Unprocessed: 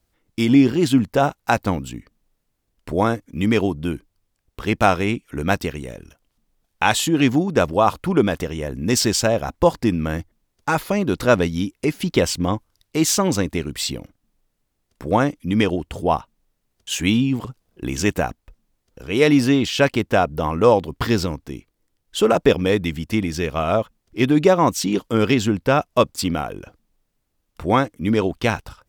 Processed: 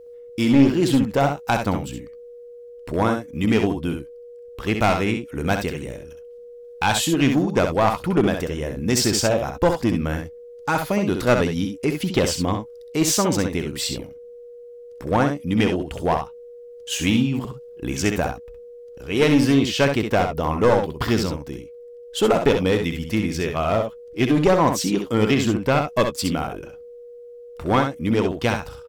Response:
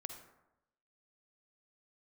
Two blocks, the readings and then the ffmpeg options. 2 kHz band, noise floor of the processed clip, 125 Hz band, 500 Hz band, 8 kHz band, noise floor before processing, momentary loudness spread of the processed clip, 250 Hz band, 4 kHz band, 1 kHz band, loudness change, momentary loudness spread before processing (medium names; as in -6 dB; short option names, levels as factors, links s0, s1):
-1.5 dB, -41 dBFS, -0.5 dB, -1.5 dB, -0.5 dB, -73 dBFS, 14 LU, -1.0 dB, -0.5 dB, -1.5 dB, -1.0 dB, 12 LU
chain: -af "aeval=exprs='val(0)+0.0112*sin(2*PI*480*n/s)':c=same,aeval=exprs='clip(val(0),-1,0.211)':c=same,aecho=1:1:65|79:0.473|0.133,volume=0.841"